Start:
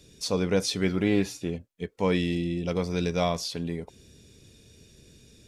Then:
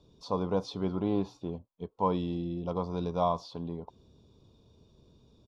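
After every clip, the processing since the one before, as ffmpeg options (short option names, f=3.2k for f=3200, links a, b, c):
-af "firequalizer=gain_entry='entry(460,0);entry(1000,12);entry(1800,-21);entry(3500,-5);entry(8600,-25)':delay=0.05:min_phase=1,volume=-5.5dB"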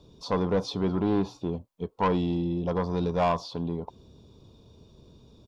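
-af "asoftclip=type=tanh:threshold=-25dB,volume=7dB"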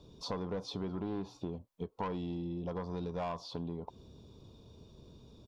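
-af "acompressor=threshold=-34dB:ratio=5,volume=-2dB"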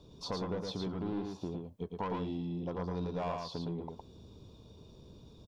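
-af "aecho=1:1:112:0.631"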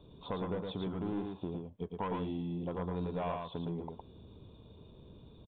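-af "aresample=8000,aresample=44100"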